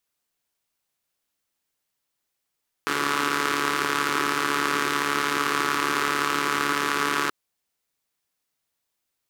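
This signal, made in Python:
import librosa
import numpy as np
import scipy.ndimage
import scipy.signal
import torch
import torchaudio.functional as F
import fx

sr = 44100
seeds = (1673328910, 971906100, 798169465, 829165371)

y = fx.engine_four(sr, seeds[0], length_s=4.43, rpm=4300, resonances_hz=(360.0, 1200.0))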